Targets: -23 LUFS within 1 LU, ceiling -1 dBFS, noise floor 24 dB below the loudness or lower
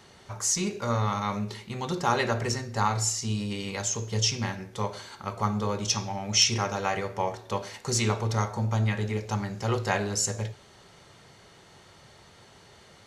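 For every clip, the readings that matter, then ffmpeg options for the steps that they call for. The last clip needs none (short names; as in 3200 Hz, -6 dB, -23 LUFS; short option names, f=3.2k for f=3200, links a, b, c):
loudness -28.0 LUFS; peak -8.5 dBFS; loudness target -23.0 LUFS
-> -af "volume=5dB"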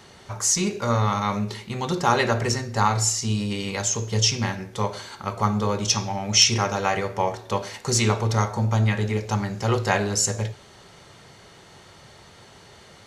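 loudness -23.0 LUFS; peak -3.5 dBFS; noise floor -49 dBFS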